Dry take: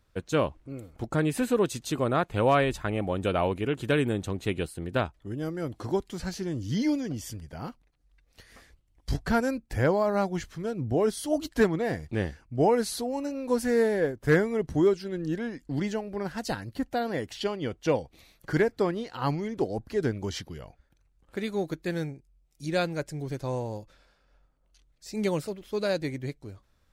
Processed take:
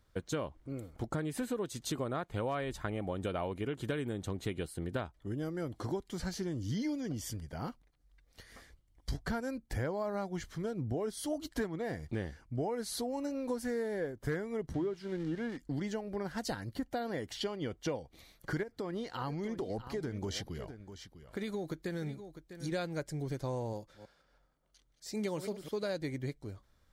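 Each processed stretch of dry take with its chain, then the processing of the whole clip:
14.74–15.57 switching spikes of -26.5 dBFS + LPF 2800 Hz + notches 50/100/150 Hz
18.63–22.72 compressor, threshold -29 dBFS + echo 0.651 s -13 dB
23.73–25.83 reverse delay 0.163 s, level -12.5 dB + low shelf 89 Hz -10.5 dB
whole clip: notch 2600 Hz, Q 10; compressor, threshold -31 dBFS; gain -1.5 dB

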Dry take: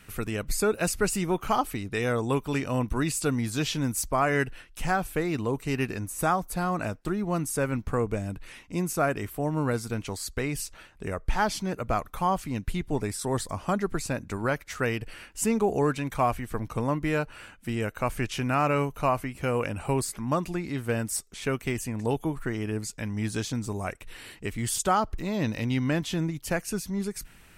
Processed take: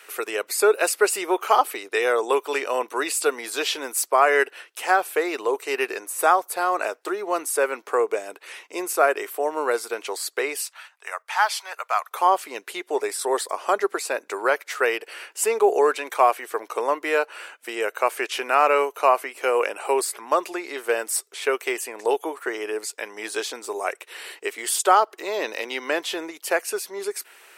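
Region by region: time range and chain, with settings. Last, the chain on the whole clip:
10.61–12.11 HPF 810 Hz 24 dB/oct + gate -55 dBFS, range -6 dB
whole clip: elliptic high-pass 390 Hz, stop band 80 dB; dynamic EQ 6300 Hz, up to -5 dB, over -51 dBFS, Q 2.6; gain +8 dB

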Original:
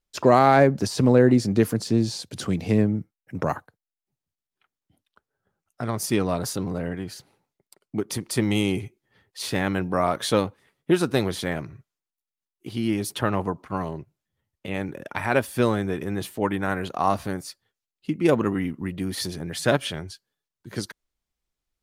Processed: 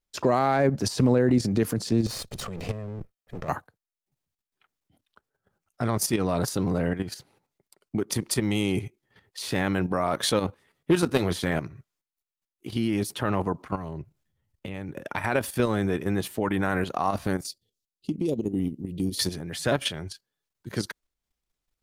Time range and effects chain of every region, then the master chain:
2.06–3.49 minimum comb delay 1.6 ms + compressor, threshold -28 dBFS
10.47–11.51 overloaded stage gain 12.5 dB + doubler 12 ms -10 dB
13.75–14.96 compressor 2:1, threshold -40 dBFS + low shelf 120 Hz +10.5 dB
17.46–19.19 Chebyshev band-stop 410–4000 Hz + compressor 4:1, threshold -26 dBFS
whole clip: level quantiser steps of 10 dB; limiter -17 dBFS; gain +5 dB

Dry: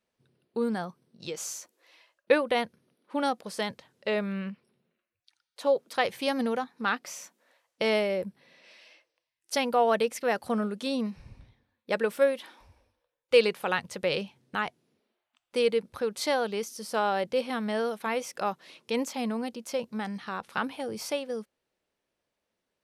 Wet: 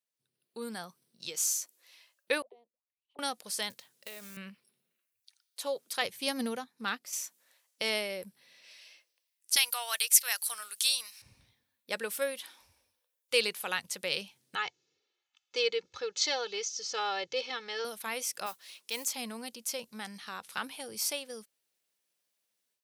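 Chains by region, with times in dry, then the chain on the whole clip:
2.42–3.19 HPF 260 Hz + fixed phaser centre 400 Hz, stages 6 + auto-wah 400–3700 Hz, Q 15, down, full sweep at -31 dBFS
3.7–4.37 short-mantissa float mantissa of 2-bit + compressor 16:1, threshold -35 dBFS + HPF 100 Hz
6.02–7.13 low shelf 380 Hz +10 dB + upward expander, over -38 dBFS
9.56–11.22 HPF 940 Hz + tilt +4 dB/oct
14.55–17.85 elliptic low-pass 6700 Hz + notch 880 Hz, Q 15 + comb 2.3 ms, depth 82%
18.46–19.06 HPF 550 Hz 6 dB/oct + modulation noise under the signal 26 dB
whole clip: HPF 71 Hz; pre-emphasis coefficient 0.9; AGC gain up to 11 dB; gain -3 dB

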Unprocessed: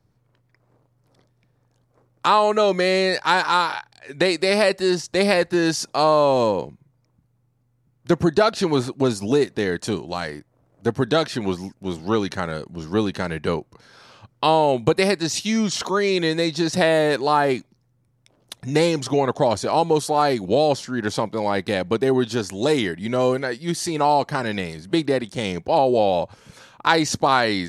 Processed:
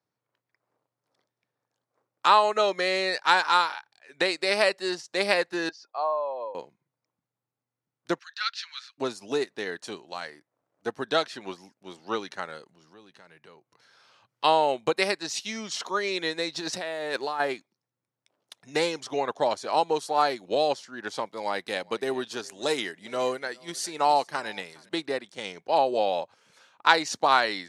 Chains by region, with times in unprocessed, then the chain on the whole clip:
5.69–6.55 spectral contrast raised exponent 1.6 + HPF 690 Hz + air absorption 240 m
8.19–8.98 steep high-pass 1400 Hz + resonant high shelf 6900 Hz -11 dB, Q 1.5
12.68–14.44 compressor 2:1, threshold -45 dBFS + bell 130 Hz +8 dB 0.58 oct + mismatched tape noise reduction encoder only
16.54–17.4 negative-ratio compressor -22 dBFS + backlash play -45.5 dBFS
21.26–24.89 high shelf 8000 Hz +8 dB + echo 0.412 s -20.5 dB
whole clip: weighting filter A; upward expander 1.5:1, over -34 dBFS; gain -1 dB

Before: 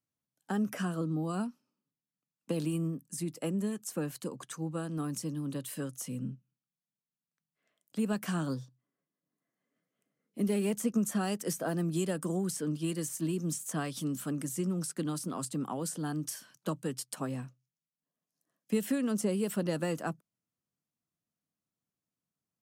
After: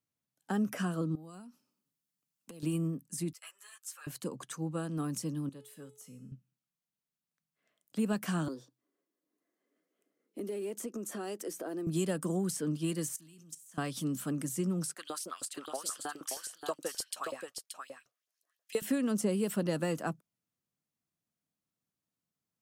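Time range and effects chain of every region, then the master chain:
1.15–2.63 high shelf 4300 Hz +8 dB + compressor 20:1, threshold -45 dBFS
3.33–4.07 HPF 1200 Hz 24 dB/oct + ensemble effect
5.49–6.32 notch 5400 Hz, Q 27 + resonator 430 Hz, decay 0.61 s, mix 80%
8.48–11.87 resonant high-pass 340 Hz, resonance Q 2.8 + compressor 3:1, threshold -38 dBFS
13.16–13.78 passive tone stack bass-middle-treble 5-5-5 + flutter echo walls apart 10.5 m, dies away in 0.23 s + level quantiser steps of 14 dB
14.94–18.82 bell 890 Hz -5.5 dB 0.52 oct + LFO high-pass saw up 6.3 Hz 450–4600 Hz + echo 0.578 s -6 dB
whole clip: dry

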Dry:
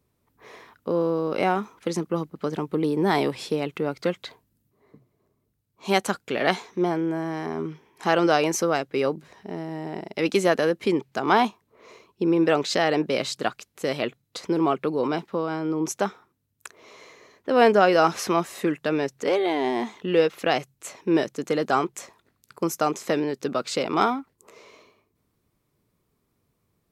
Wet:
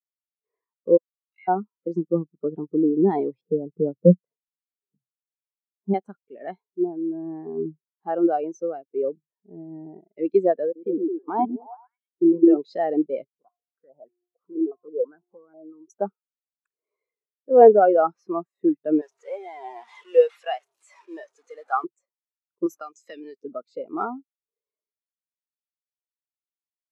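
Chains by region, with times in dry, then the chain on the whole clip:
0.97–1.48 Chebyshev high-pass 1800 Hz, order 4 + bell 11000 Hz -10 dB 0.93 oct
3.41–5.94 LPF 1000 Hz + bell 180 Hz +7.5 dB 0.37 oct
10.65–12.57 level quantiser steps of 23 dB + delay with a stepping band-pass 0.105 s, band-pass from 260 Hz, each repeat 0.7 oct, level -0.5 dB
13.24–15.9 de-hum 355.5 Hz, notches 4 + compressor 2:1, threshold -49 dBFS + stepped low-pass 6.1 Hz 420–2000 Hz
19.01–21.84 delta modulation 64 kbps, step -24 dBFS + HPF 750 Hz
22.66–23.43 tilt shelf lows -9 dB, about 1300 Hz + modulation noise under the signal 16 dB + three-band squash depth 100%
whole clip: AGC gain up to 12 dB; spectral expander 2.5:1; gain -1 dB

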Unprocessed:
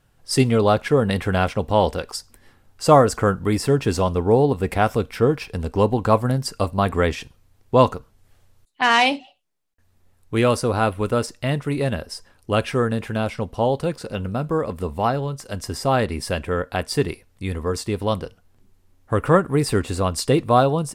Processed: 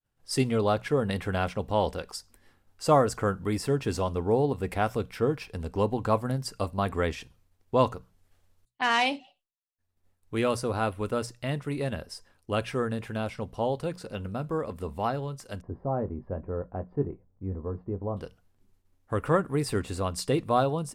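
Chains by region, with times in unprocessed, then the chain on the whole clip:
15.61–18.17 Bessel low-pass 700 Hz, order 4 + doubler 21 ms -9.5 dB
whole clip: expander -52 dBFS; notches 60/120/180 Hz; gain -8 dB

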